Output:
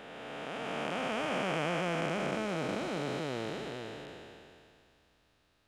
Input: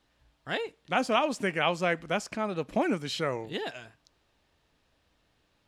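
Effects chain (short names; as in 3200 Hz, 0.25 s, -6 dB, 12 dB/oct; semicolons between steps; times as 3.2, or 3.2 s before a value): time blur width 1.21 s; gain +2.5 dB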